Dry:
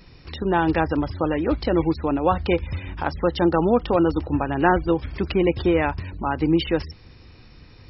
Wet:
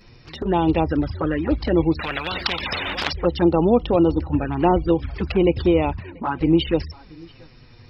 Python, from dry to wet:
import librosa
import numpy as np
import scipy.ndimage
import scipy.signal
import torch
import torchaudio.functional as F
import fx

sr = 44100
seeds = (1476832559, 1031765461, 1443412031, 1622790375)

y = fx.bandpass_edges(x, sr, low_hz=130.0, high_hz=3000.0, at=(5.98, 6.41))
y = y + 10.0 ** (-24.0 / 20.0) * np.pad(y, (int(684 * sr / 1000.0), 0))[:len(y)]
y = fx.env_flanger(y, sr, rest_ms=9.8, full_db=-16.5)
y = fx.spectral_comp(y, sr, ratio=10.0, at=(1.99, 3.13))
y = F.gain(torch.from_numpy(y), 3.0).numpy()